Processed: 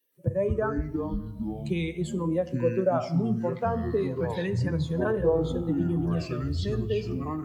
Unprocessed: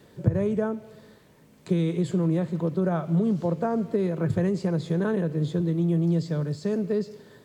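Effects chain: expander on every frequency bin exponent 2; bass shelf 250 Hz -10 dB; on a send at -11.5 dB: reverberation RT60 1.0 s, pre-delay 7 ms; on the sum: ever faster or slower copies 119 ms, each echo -6 st, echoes 3; sweeping bell 0.37 Hz 460–4000 Hz +9 dB; trim +3.5 dB

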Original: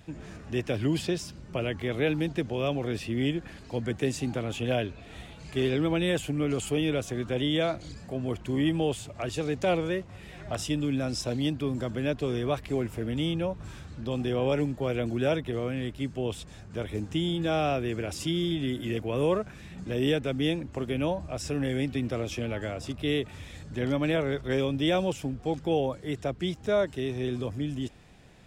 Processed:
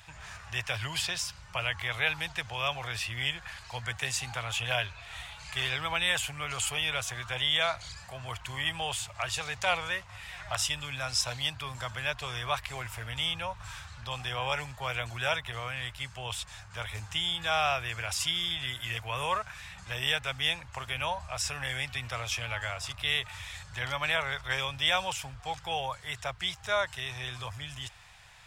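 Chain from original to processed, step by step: FFT filter 110 Hz 0 dB, 290 Hz -26 dB, 920 Hz +10 dB; trim -3.5 dB

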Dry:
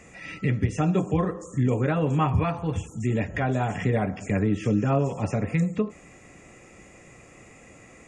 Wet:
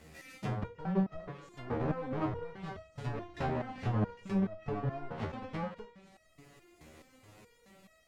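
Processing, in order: square wave that keeps the level; low-pass that closes with the level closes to 1.2 kHz, closed at -16.5 dBFS; resonator arpeggio 4.7 Hz 78–640 Hz; trim -2 dB

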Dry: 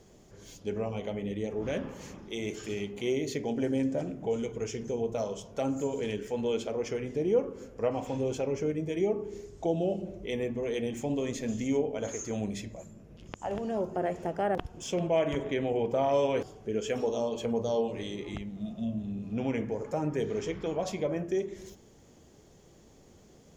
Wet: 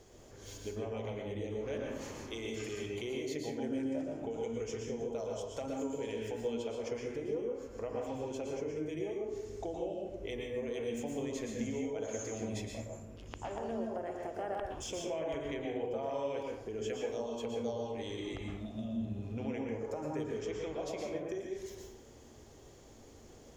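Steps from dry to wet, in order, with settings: peaking EQ 180 Hz -12.5 dB 0.58 oct; compression 3:1, threshold -41 dBFS, peak gain reduction 14.5 dB; plate-style reverb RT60 0.6 s, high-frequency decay 0.65×, pre-delay 105 ms, DRR 0.5 dB

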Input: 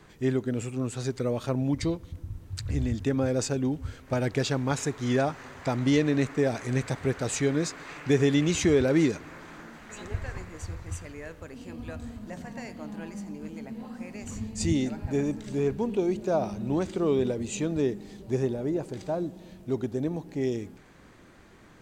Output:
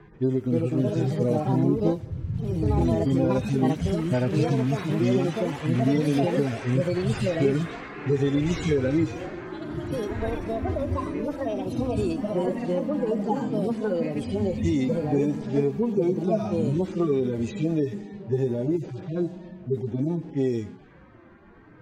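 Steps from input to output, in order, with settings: harmonic-percussive separation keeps harmonic; level-controlled noise filter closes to 1.6 kHz, open at -25.5 dBFS; compression, threshold -27 dBFS, peak gain reduction 9.5 dB; ever faster or slower copies 349 ms, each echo +4 st, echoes 2; trim +7 dB

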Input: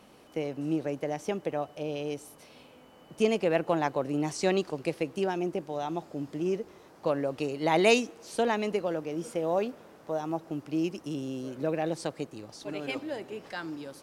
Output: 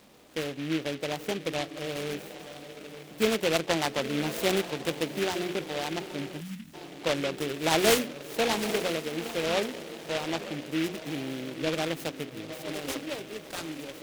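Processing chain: hum notches 60/120/180/240/300/360/420 Hz; echo that smears into a reverb 871 ms, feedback 41%, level -11 dB; spectral selection erased 6.40–6.74 s, 300–2600 Hz; delay time shaken by noise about 2.3 kHz, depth 0.15 ms

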